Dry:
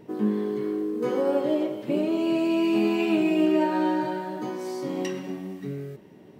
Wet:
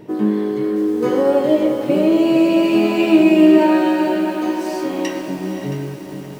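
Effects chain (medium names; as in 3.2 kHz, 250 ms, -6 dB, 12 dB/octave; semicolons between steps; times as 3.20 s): 3.58–5.28 s: high-pass 290 Hz 12 dB/octave; echo that smears into a reverb 519 ms, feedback 46%, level -10 dB; on a send at -10 dB: reverberation RT60 0.45 s, pre-delay 3 ms; on the sum: bit-crushed delay 671 ms, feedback 55%, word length 7-bit, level -13 dB; trim +8 dB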